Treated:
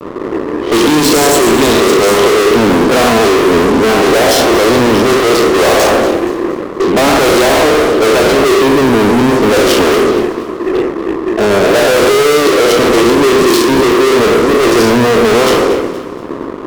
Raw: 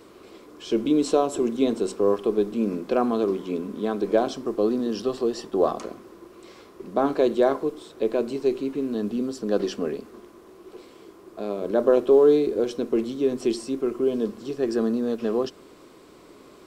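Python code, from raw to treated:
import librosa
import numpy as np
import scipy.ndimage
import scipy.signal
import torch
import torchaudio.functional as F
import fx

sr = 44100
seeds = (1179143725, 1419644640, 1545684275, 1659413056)

y = fx.spec_trails(x, sr, decay_s=0.93)
y = scipy.signal.sosfilt(scipy.signal.butter(4, 250.0, 'highpass', fs=sr, output='sos'), y)
y = fx.env_lowpass(y, sr, base_hz=320.0, full_db=-14.5)
y = fx.high_shelf(y, sr, hz=3300.0, db=9.0)
y = fx.fuzz(y, sr, gain_db=44.0, gate_db=-52.0)
y = fx.echo_alternate(y, sr, ms=118, hz=1600.0, feedback_pct=63, wet_db=-9)
y = y * librosa.db_to_amplitude(5.0)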